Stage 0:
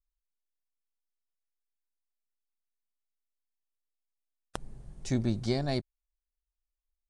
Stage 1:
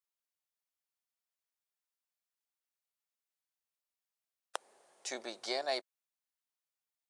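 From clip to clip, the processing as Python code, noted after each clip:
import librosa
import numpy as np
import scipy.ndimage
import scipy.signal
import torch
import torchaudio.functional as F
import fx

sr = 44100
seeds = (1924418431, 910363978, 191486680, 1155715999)

y = scipy.signal.sosfilt(scipy.signal.butter(4, 520.0, 'highpass', fs=sr, output='sos'), x)
y = y * librosa.db_to_amplitude(1.5)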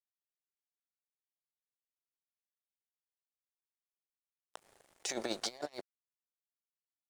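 y = fx.low_shelf(x, sr, hz=250.0, db=10.5)
y = fx.over_compress(y, sr, threshold_db=-42.0, ratio=-0.5)
y = np.sign(y) * np.maximum(np.abs(y) - 10.0 ** (-57.0 / 20.0), 0.0)
y = y * librosa.db_to_amplitude(4.0)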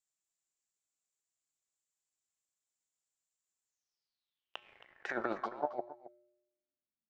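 y = fx.filter_sweep_lowpass(x, sr, from_hz=7400.0, to_hz=210.0, start_s=3.64, end_s=7.01, q=7.8)
y = fx.comb_fb(y, sr, f0_hz=120.0, decay_s=0.98, harmonics='odd', damping=0.0, mix_pct=60)
y = y + 10.0 ** (-15.5 / 20.0) * np.pad(y, (int(270 * sr / 1000.0), 0))[:len(y)]
y = y * librosa.db_to_amplitude(7.0)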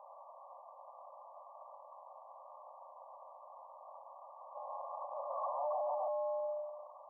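y = np.sign(x) * np.sqrt(np.mean(np.square(x)))
y = fx.brickwall_bandpass(y, sr, low_hz=520.0, high_hz=1200.0)
y = y * librosa.db_to_amplitude(13.0)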